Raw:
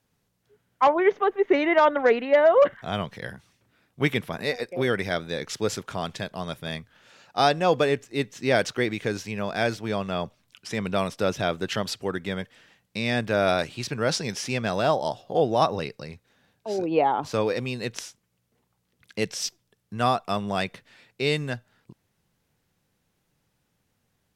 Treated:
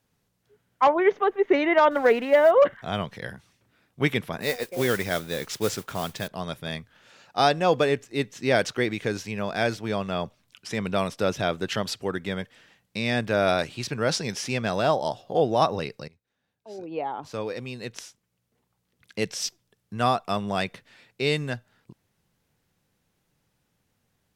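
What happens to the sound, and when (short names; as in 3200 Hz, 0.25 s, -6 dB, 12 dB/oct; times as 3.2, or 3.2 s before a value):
1.91–2.51 G.711 law mismatch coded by mu
4.41–6.28 modulation noise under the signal 13 dB
16.08–19.43 fade in, from -20.5 dB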